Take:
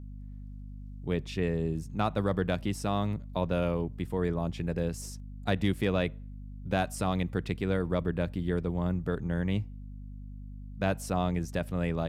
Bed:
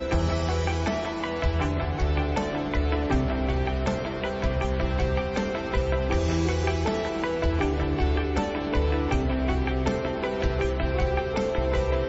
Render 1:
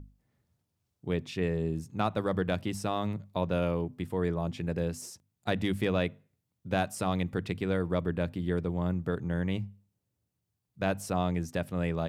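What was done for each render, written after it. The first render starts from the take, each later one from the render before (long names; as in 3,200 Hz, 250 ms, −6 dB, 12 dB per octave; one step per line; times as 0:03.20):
mains-hum notches 50/100/150/200/250 Hz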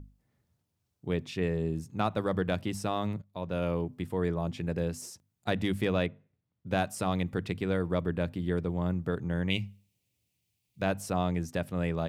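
0:03.22–0:03.75: fade in, from −15 dB
0:06.06–0:06.67: high-frequency loss of the air 220 metres
0:09.50–0:10.82: high shelf with overshoot 1,900 Hz +8 dB, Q 3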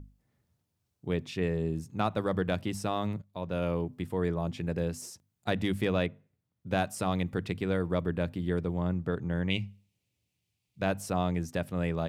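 0:08.81–0:10.83: high-shelf EQ 8,700 Hz −9.5 dB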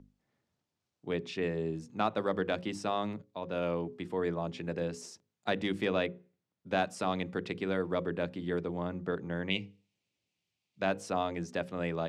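three-way crossover with the lows and the highs turned down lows −15 dB, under 180 Hz, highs −22 dB, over 7,600 Hz
mains-hum notches 60/120/180/240/300/360/420/480/540 Hz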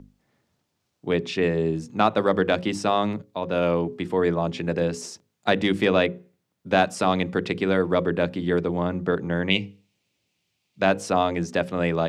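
level +10.5 dB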